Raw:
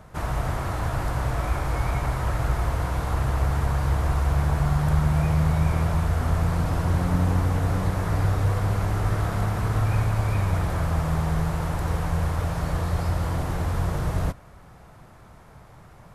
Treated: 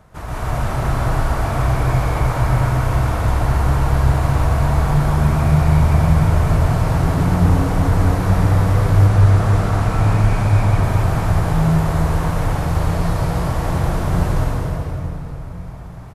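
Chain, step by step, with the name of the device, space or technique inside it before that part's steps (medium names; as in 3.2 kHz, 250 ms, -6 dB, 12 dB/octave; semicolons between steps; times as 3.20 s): cave (delay 258 ms -8.5 dB; reverberation RT60 3.3 s, pre-delay 110 ms, DRR -8 dB); 9.08–10.83 s: low-pass 11 kHz 12 dB/octave; trim -2 dB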